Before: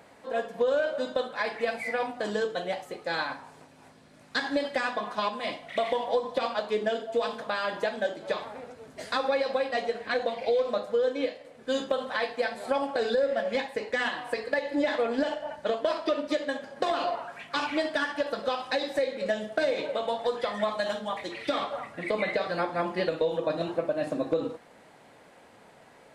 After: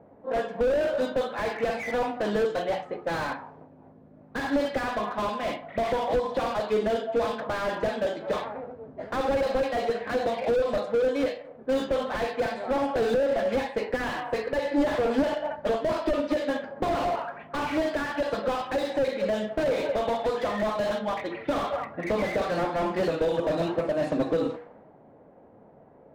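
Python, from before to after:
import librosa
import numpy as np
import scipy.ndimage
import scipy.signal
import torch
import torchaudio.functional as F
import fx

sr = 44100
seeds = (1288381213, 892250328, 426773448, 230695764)

y = fx.env_lowpass(x, sr, base_hz=500.0, full_db=-23.5)
y = fx.hum_notches(y, sr, base_hz=60, count=8)
y = fx.slew_limit(y, sr, full_power_hz=24.0)
y = y * 10.0 ** (5.5 / 20.0)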